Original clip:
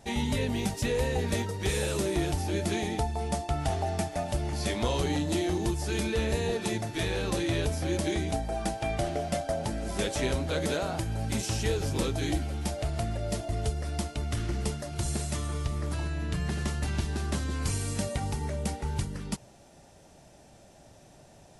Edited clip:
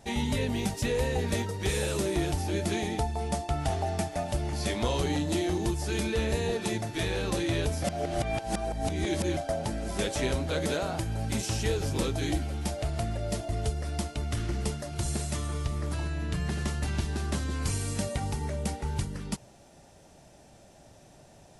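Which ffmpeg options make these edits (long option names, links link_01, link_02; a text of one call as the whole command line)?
ffmpeg -i in.wav -filter_complex "[0:a]asplit=3[link_01][link_02][link_03];[link_01]atrim=end=7.842[link_04];[link_02]atrim=start=7.838:end=9.372,asetpts=PTS-STARTPTS,areverse[link_05];[link_03]atrim=start=9.368[link_06];[link_04][link_05]acrossfade=duration=0.004:curve1=hsin:curve2=hsin[link_07];[link_07][link_06]acrossfade=duration=0.004:curve1=hsin:curve2=hsin" out.wav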